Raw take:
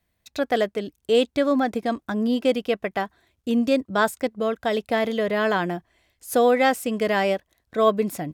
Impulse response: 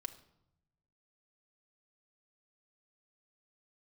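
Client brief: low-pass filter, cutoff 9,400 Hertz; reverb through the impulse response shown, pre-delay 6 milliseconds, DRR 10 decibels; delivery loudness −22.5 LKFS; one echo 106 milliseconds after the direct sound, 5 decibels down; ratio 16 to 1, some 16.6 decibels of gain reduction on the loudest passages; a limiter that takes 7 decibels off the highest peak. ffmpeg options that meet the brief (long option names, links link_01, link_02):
-filter_complex "[0:a]lowpass=9400,acompressor=threshold=-31dB:ratio=16,alimiter=level_in=3dB:limit=-24dB:level=0:latency=1,volume=-3dB,aecho=1:1:106:0.562,asplit=2[link_01][link_02];[1:a]atrim=start_sample=2205,adelay=6[link_03];[link_02][link_03]afir=irnorm=-1:irlink=0,volume=-7dB[link_04];[link_01][link_04]amix=inputs=2:normalize=0,volume=14dB"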